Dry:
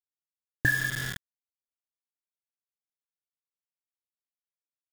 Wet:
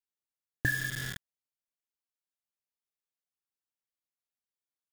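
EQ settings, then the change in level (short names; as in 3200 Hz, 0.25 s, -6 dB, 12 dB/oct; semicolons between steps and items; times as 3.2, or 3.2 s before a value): dynamic EQ 950 Hz, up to -6 dB, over -40 dBFS, Q 1; -3.0 dB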